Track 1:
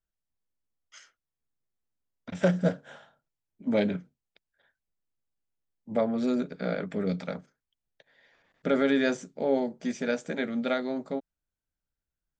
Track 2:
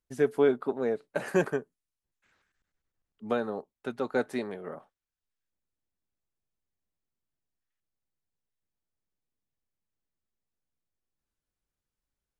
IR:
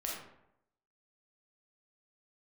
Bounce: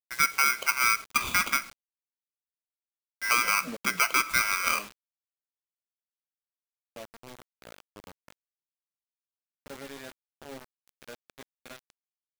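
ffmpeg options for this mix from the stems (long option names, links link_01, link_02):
-filter_complex "[0:a]lowshelf=frequency=80:gain=-11,flanger=delay=5.9:depth=3.5:regen=72:speed=0.5:shape=triangular,volume=-10.5dB,asplit=2[link_01][link_02];[link_02]volume=-13dB[link_03];[1:a]equalizer=frequency=660:width=2.3:gain=9.5,aeval=exprs='val(0)*sgn(sin(2*PI*1800*n/s))':channel_layout=same,volume=1.5dB,asplit=3[link_04][link_05][link_06];[link_05]volume=-18.5dB[link_07];[link_06]apad=whole_len=546546[link_08];[link_01][link_08]sidechaingate=range=-48dB:threshold=-48dB:ratio=16:detection=peak[link_09];[2:a]atrim=start_sample=2205[link_10];[link_07][link_10]afir=irnorm=-1:irlink=0[link_11];[link_03]aecho=0:1:997:1[link_12];[link_09][link_04][link_11][link_12]amix=inputs=4:normalize=0,dynaudnorm=framelen=220:gausssize=11:maxgain=9dB,acrusher=bits=6:mix=0:aa=0.000001,alimiter=limit=-14dB:level=0:latency=1:release=220"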